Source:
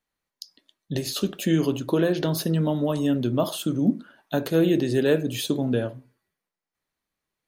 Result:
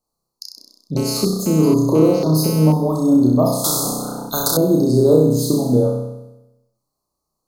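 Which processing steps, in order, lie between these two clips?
Chebyshev band-stop 1.2–4.3 kHz, order 4; flutter echo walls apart 5.5 m, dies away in 0.96 s; 0.97–2.72 s: mobile phone buzz -38 dBFS; 3.64–4.57 s: spectrum-flattening compressor 4:1; trim +5 dB

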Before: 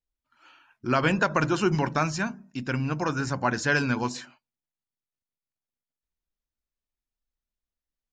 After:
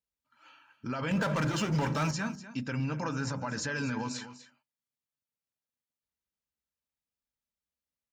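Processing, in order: high-pass 75 Hz; 1.11–2.11 s: waveshaping leveller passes 3; peak limiter -22.5 dBFS, peak gain reduction 12 dB; comb of notches 360 Hz; delay 246 ms -14 dB; trim -1 dB

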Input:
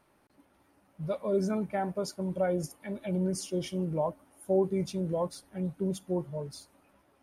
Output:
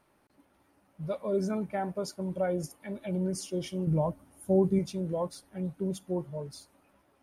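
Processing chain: 3.87–4.79 s: tone controls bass +11 dB, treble +3 dB; trim -1 dB

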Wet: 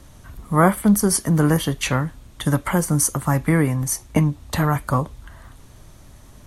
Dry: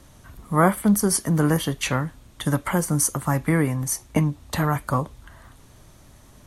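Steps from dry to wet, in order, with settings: bass shelf 85 Hz +5.5 dB; trim +2 dB

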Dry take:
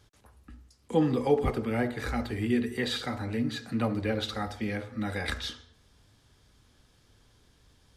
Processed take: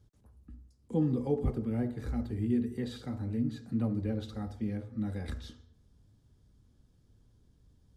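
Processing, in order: FFT filter 200 Hz 0 dB, 730 Hz -12 dB, 2.3 kHz -19 dB, 7.3 kHz -13 dB

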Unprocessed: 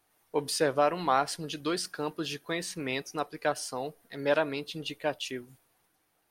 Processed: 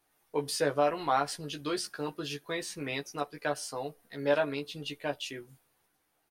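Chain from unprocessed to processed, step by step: doubling 14 ms -4 dB; trim -3.5 dB

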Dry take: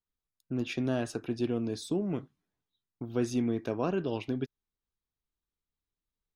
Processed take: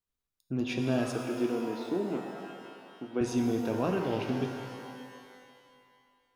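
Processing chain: 1.12–3.21 s: Chebyshev band-pass 270–2600 Hz, order 2; pitch-shifted reverb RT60 2.2 s, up +12 st, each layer -8 dB, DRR 3 dB

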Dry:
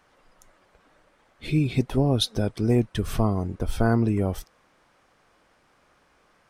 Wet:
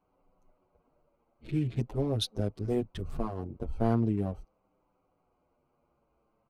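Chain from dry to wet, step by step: local Wiener filter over 25 samples; endless flanger 7.5 ms -0.42 Hz; trim -4.5 dB

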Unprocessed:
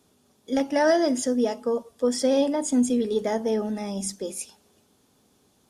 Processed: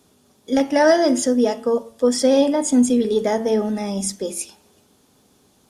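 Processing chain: de-hum 112.9 Hz, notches 31; trim +6 dB

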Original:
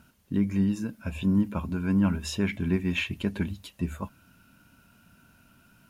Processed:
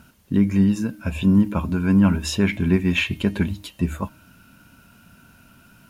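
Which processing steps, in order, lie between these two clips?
de-hum 309 Hz, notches 14; trim +7.5 dB

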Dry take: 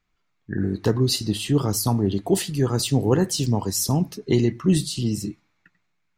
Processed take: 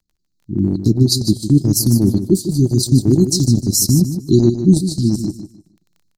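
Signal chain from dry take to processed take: Chebyshev band-stop 360–4100 Hz, order 5; crackle 12 per s -49 dBFS; level rider gain up to 9 dB; transient shaper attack 0 dB, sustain -12 dB; feedback delay 152 ms, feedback 24%, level -10 dB; trim +1.5 dB

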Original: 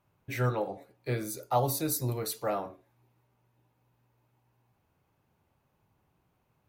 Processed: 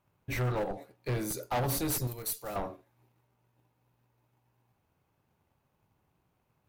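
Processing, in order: in parallel at -3.5 dB: Schmitt trigger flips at -28 dBFS; 2.07–2.56 s: on the sum: pre-emphasis filter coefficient 0.8; saturation -26.5 dBFS, distortion -11 dB; waveshaping leveller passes 1

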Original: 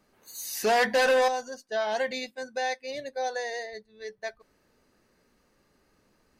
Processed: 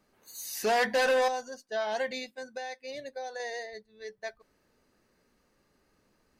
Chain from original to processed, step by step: 2.21–3.40 s: compression, threshold -32 dBFS, peak gain reduction 7 dB; trim -3 dB

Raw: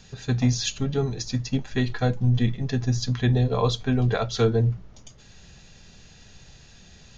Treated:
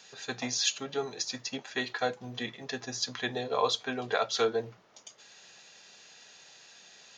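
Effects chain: high-pass 550 Hz 12 dB/octave

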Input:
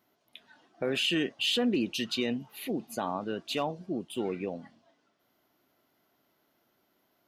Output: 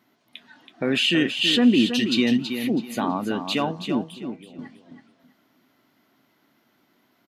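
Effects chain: graphic EQ 125/250/1000/2000/4000/8000 Hz +6/+11/+5/+8/+5/+4 dB; 4.03–4.59 s: compression 10:1, threshold -43 dBFS, peak gain reduction 23.5 dB; feedback delay 326 ms, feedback 25%, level -8 dB

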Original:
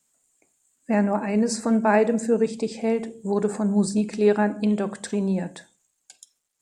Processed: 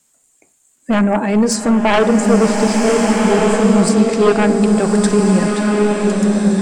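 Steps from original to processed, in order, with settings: sine folder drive 9 dB, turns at -6 dBFS; swelling reverb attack 1500 ms, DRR 0 dB; trim -2.5 dB

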